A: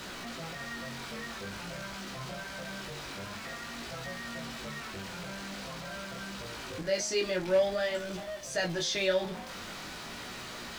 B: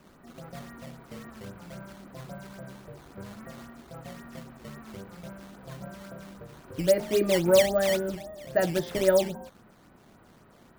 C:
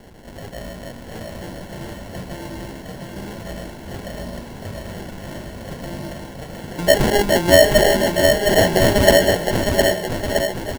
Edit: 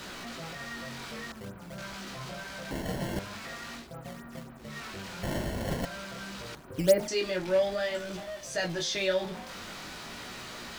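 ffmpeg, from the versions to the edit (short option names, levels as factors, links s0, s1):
-filter_complex "[1:a]asplit=3[s0][s1][s2];[2:a]asplit=2[s3][s4];[0:a]asplit=6[s5][s6][s7][s8][s9][s10];[s5]atrim=end=1.322[s11];[s0]atrim=start=1.318:end=1.782[s12];[s6]atrim=start=1.778:end=2.712[s13];[s3]atrim=start=2.708:end=3.192[s14];[s7]atrim=start=3.188:end=3.9[s15];[s1]atrim=start=3.74:end=4.77[s16];[s8]atrim=start=4.61:end=5.232[s17];[s4]atrim=start=5.228:end=5.852[s18];[s9]atrim=start=5.848:end=6.552[s19];[s2]atrim=start=6.548:end=7.082[s20];[s10]atrim=start=7.078[s21];[s11][s12]acrossfade=d=0.004:c1=hsin:c2=hsin[s22];[s22][s13]acrossfade=d=0.004:c1=hsin:c2=hsin[s23];[s23][s14]acrossfade=d=0.004:c1=hsin:c2=hsin[s24];[s24][s15]acrossfade=d=0.004:c1=hsin:c2=hsin[s25];[s25][s16]acrossfade=d=0.16:c1=tri:c2=tri[s26];[s26][s17]acrossfade=d=0.16:c1=tri:c2=tri[s27];[s27][s18]acrossfade=d=0.004:c1=hsin:c2=hsin[s28];[s28][s19]acrossfade=d=0.004:c1=hsin:c2=hsin[s29];[s29][s20]acrossfade=d=0.004:c1=hsin:c2=hsin[s30];[s30][s21]acrossfade=d=0.004:c1=hsin:c2=hsin"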